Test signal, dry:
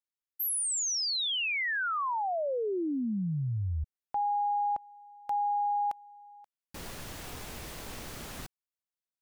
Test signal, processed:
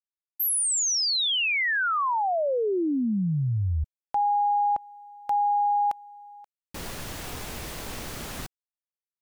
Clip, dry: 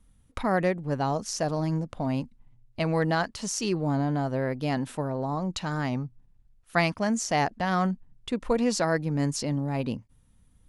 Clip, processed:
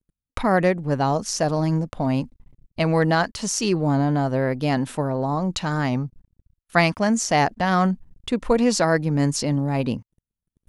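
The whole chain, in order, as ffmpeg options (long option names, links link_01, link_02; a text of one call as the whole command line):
ffmpeg -i in.wav -af "agate=range=-36dB:threshold=-55dB:ratio=16:release=21:detection=rms,volume=6dB" out.wav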